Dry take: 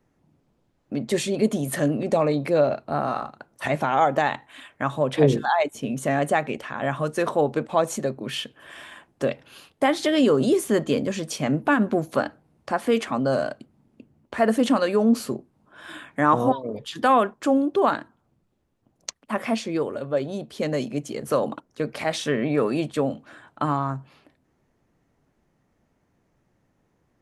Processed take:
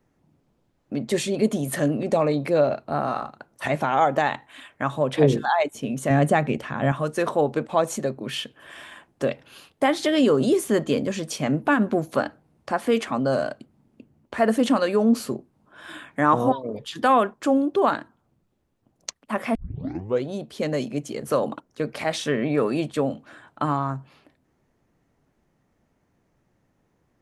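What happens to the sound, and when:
6.10–6.92 s: peaking EQ 130 Hz +10 dB 2.3 oct
19.55 s: tape start 0.69 s

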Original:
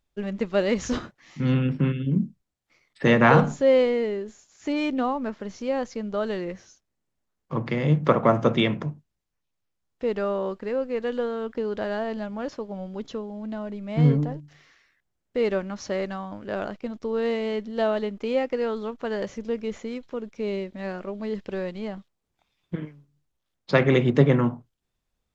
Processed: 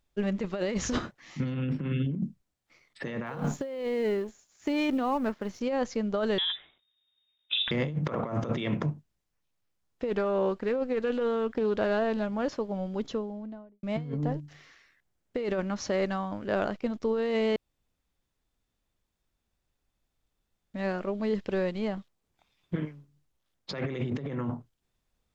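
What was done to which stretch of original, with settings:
3.26–5.61 s: companding laws mixed up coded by A
6.38–7.71 s: frequency inversion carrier 3.7 kHz
10.10–12.32 s: loudspeaker Doppler distortion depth 0.12 ms
13.01–13.83 s: studio fade out
17.56–20.74 s: room tone
whole clip: compressor with a negative ratio -27 dBFS, ratio -1; trim -2 dB

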